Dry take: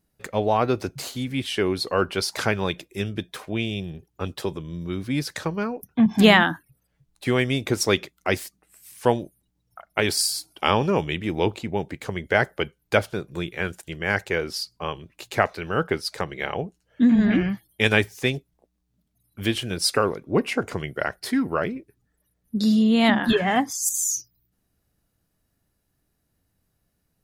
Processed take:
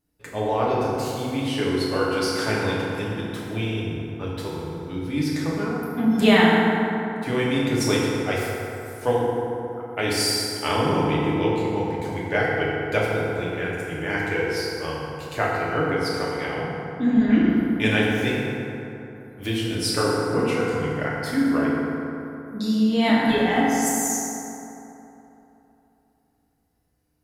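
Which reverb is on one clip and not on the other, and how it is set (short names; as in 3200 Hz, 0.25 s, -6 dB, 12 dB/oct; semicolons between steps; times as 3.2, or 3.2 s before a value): FDN reverb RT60 3.2 s, high-frequency decay 0.45×, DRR -6.5 dB; gain -7 dB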